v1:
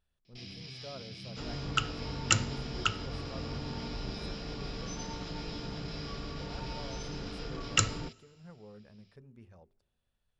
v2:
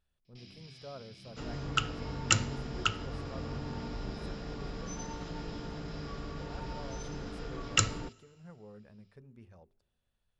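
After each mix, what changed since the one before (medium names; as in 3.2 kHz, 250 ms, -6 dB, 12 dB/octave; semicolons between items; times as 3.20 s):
first sound -8.0 dB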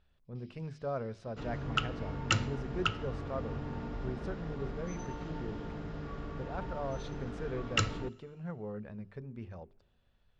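speech +10.5 dB; first sound -11.5 dB; master: add distance through air 130 m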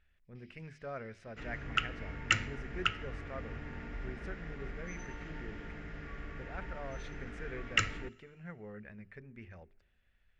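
master: add ten-band graphic EQ 125 Hz -8 dB, 250 Hz -4 dB, 500 Hz -5 dB, 1 kHz -9 dB, 2 kHz +12 dB, 4 kHz -8 dB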